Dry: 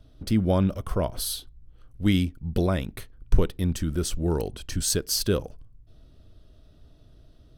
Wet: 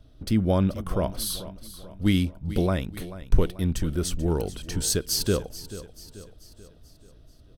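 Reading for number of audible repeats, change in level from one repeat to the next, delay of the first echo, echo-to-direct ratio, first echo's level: 4, −6.0 dB, 436 ms, −14.0 dB, −15.0 dB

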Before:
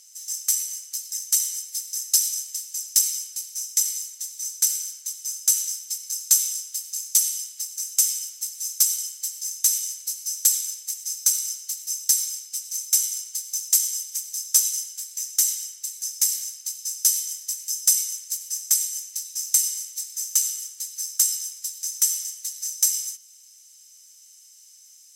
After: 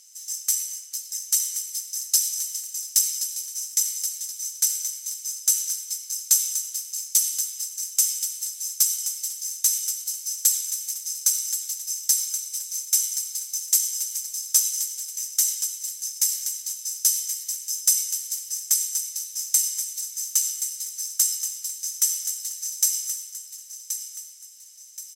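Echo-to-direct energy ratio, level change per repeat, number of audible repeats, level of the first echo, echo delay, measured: −8.5 dB, −8.5 dB, 4, −9.0 dB, 1,076 ms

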